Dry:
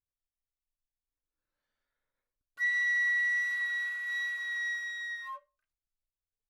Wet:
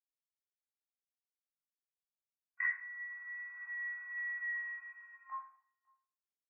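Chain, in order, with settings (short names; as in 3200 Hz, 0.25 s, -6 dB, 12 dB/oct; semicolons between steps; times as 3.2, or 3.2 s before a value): G.711 law mismatch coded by A; gate with hold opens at -37 dBFS; vocal rider within 4 dB 2 s; flipped gate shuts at -36 dBFS, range -30 dB; brick-wall FIR band-pass 670–2600 Hz; air absorption 210 m; doubler 13 ms -4.5 dB; outdoor echo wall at 95 m, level -30 dB; reverb RT60 0.55 s, pre-delay 18 ms, DRR -9 dB; gain +12.5 dB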